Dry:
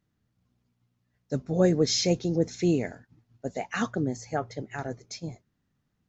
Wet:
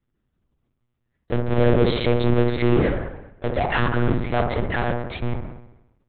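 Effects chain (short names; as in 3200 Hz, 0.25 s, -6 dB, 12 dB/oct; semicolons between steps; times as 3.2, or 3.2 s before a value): in parallel at -10 dB: fuzz box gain 46 dB, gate -51 dBFS; on the sum: dark delay 64 ms, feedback 62%, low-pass 1600 Hz, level -4 dB; monotone LPC vocoder at 8 kHz 120 Hz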